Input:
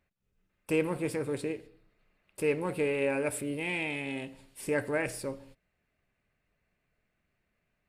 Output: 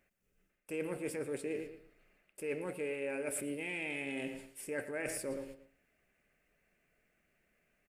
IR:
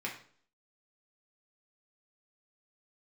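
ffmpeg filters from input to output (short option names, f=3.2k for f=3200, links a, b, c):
-filter_complex "[0:a]lowshelf=f=250:g=-8,asplit=2[a][b];[b]adelay=114,lowpass=f=4.4k:p=1,volume=-14dB,asplit=2[c][d];[d]adelay=114,lowpass=f=4.4k:p=1,volume=0.32,asplit=2[e][f];[f]adelay=114,lowpass=f=4.4k:p=1,volume=0.32[g];[a][c][e][g]amix=inputs=4:normalize=0,areverse,acompressor=threshold=-42dB:ratio=6,areverse,equalizer=f=100:t=o:w=0.67:g=-10,equalizer=f=1k:t=o:w=0.67:g=-9,equalizer=f=4k:t=o:w=0.67:g=-9,volume=7dB"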